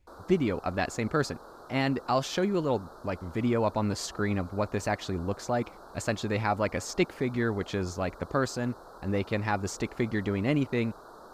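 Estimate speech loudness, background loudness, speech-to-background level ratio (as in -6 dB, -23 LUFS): -30.5 LUFS, -49.0 LUFS, 18.5 dB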